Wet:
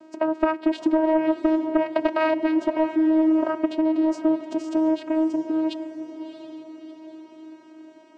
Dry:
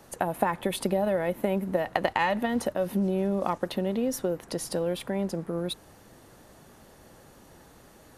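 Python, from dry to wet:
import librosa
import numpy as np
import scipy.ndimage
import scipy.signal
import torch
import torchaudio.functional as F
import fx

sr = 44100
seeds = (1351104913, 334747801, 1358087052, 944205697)

p1 = fx.spec_quant(x, sr, step_db=15)
p2 = fx.high_shelf(p1, sr, hz=4300.0, db=-7.0)
p3 = fx.vocoder(p2, sr, bands=8, carrier='saw', carrier_hz=316.0)
p4 = p3 + fx.echo_diffused(p3, sr, ms=677, feedback_pct=46, wet_db=-11.0, dry=0)
y = fx.fold_sine(p4, sr, drive_db=5, ceiling_db=-12.0)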